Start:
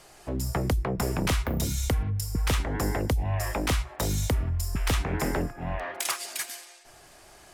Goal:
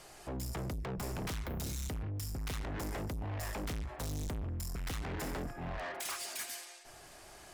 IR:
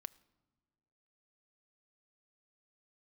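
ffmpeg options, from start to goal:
-filter_complex "[0:a]asettb=1/sr,asplit=3[link_01][link_02][link_03];[link_01]atrim=end=3.644[link_04];[link_02]atrim=start=3.64:end=4.48,asetpts=PTS-STARTPTS,afade=type=in:duration=0.004:curve=qsin,afade=type=out:start_time=0.836:duration=0.004:curve=qsin,lowshelf=frequency=180:gain=9.5[link_05];[link_03]atrim=start=4.476[link_06];[link_04][link_05]acrossfade=duration=0.004:curve1=hsin:curve2=qsin[link_07];[link_07][link_06]acrossfade=duration=0.004:curve1=qsin:curve2=hsin,asoftclip=type=tanh:threshold=-35dB,volume=-1.5dB"

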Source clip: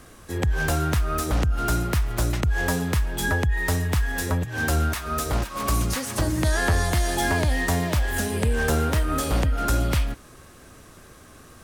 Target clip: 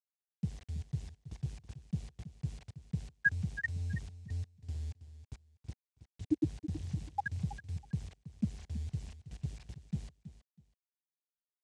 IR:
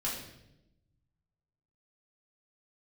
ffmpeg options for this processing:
-filter_complex "[0:a]bandreject=frequency=60:width_type=h:width=6,bandreject=frequency=120:width_type=h:width=6,bandreject=frequency=180:width_type=h:width=6,bandreject=frequency=240:width_type=h:width=6,bandreject=frequency=300:width_type=h:width=6,bandreject=frequency=360:width_type=h:width=6,bandreject=frequency=420:width_type=h:width=6,bandreject=frequency=480:width_type=h:width=6,afftfilt=real='re*gte(hypot(re,im),0.631)':imag='im*gte(hypot(re,im),0.631)':win_size=1024:overlap=0.75,lowshelf=frequency=420:gain=7,asplit=2[link_01][link_02];[link_02]acompressor=threshold=-29dB:ratio=5,volume=1dB[link_03];[link_01][link_03]amix=inputs=2:normalize=0,alimiter=limit=-17.5dB:level=0:latency=1:release=29,acrusher=bits=8:mix=0:aa=0.000001,highpass=220,equalizer=frequency=260:width_type=q:width=4:gain=-4,equalizer=frequency=440:width_type=q:width=4:gain=3,equalizer=frequency=750:width_type=q:width=4:gain=6,equalizer=frequency=1300:width_type=q:width=4:gain=-6,lowpass=frequency=8100:width=0.5412,lowpass=frequency=8100:width=1.3066,aecho=1:1:324|648:0.211|0.0444,volume=1dB"

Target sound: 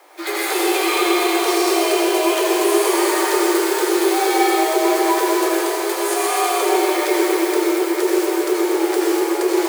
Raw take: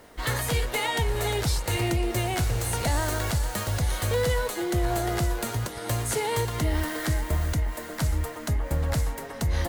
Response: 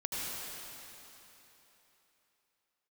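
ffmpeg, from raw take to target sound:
-filter_complex "[0:a]acrusher=bits=3:mode=log:mix=0:aa=0.000001,afreqshift=290[link_01];[1:a]atrim=start_sample=2205[link_02];[link_01][link_02]afir=irnorm=-1:irlink=0,volume=4dB"

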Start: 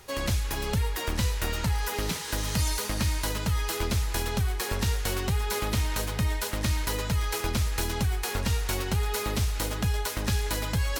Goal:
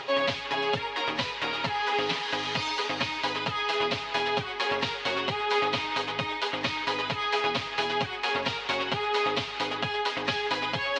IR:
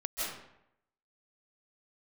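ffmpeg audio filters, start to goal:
-af "highpass=330,equalizer=frequency=350:width_type=q:width=4:gain=-5,equalizer=frequency=1500:width_type=q:width=4:gain=-4,equalizer=frequency=3000:width_type=q:width=4:gain=3,lowpass=frequency=4000:width=0.5412,lowpass=frequency=4000:width=1.3066,acompressor=mode=upward:threshold=-37dB:ratio=2.5,aecho=1:1:7.3:0.82,volume=4dB"

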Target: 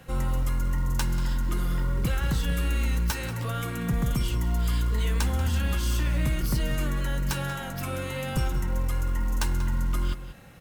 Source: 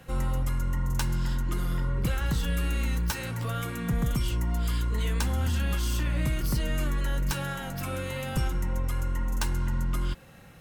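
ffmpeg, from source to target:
ffmpeg -i in.wav -filter_complex "[0:a]asplit=2[link_01][link_02];[link_02]adelay=186.6,volume=-12dB,highshelf=frequency=4000:gain=-4.2[link_03];[link_01][link_03]amix=inputs=2:normalize=0,acrusher=bits=8:mode=log:mix=0:aa=0.000001,volume=1dB" out.wav

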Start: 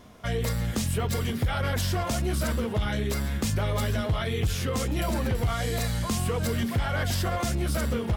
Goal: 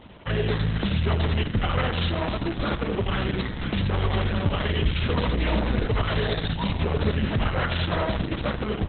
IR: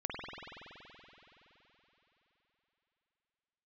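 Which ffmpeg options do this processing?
-filter_complex "[0:a]highshelf=frequency=5400:gain=5.5,asplit=2[link_01][link_02];[link_02]asoftclip=type=hard:threshold=-25.5dB,volume=-7dB[link_03];[link_01][link_03]amix=inputs=2:normalize=0,aecho=1:1:76|80|205:0.106|0.531|0.224,asplit=2[link_04][link_05];[1:a]atrim=start_sample=2205,afade=type=out:start_time=0.31:duration=0.01,atrim=end_sample=14112[link_06];[link_05][link_06]afir=irnorm=-1:irlink=0,volume=-25.5dB[link_07];[link_04][link_07]amix=inputs=2:normalize=0,asetrate=40517,aresample=44100" -ar 48000 -c:a libopus -b:a 6k

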